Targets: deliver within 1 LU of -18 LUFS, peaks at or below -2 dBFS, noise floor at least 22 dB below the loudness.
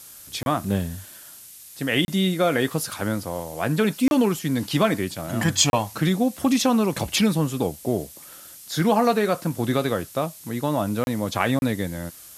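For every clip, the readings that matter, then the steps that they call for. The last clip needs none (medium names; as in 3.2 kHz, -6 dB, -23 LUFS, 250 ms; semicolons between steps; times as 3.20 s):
dropouts 6; longest dropout 31 ms; noise floor -44 dBFS; noise floor target -46 dBFS; loudness -23.5 LUFS; peak level -4.0 dBFS; loudness target -18.0 LUFS
-> interpolate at 0.43/2.05/4.08/5.70/11.04/11.59 s, 31 ms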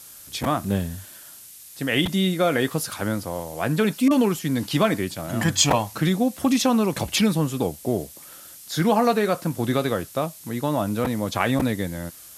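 dropouts 0; noise floor -44 dBFS; noise floor target -45 dBFS
-> noise reduction 6 dB, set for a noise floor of -44 dBFS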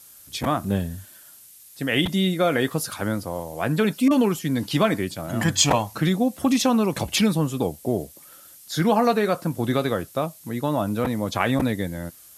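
noise floor -48 dBFS; loudness -23.5 LUFS; peak level -4.0 dBFS; loudness target -18.0 LUFS
-> trim +5.5 dB; peak limiter -2 dBFS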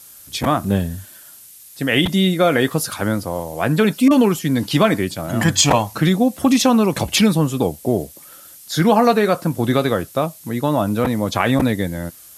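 loudness -18.0 LUFS; peak level -2.0 dBFS; noise floor -43 dBFS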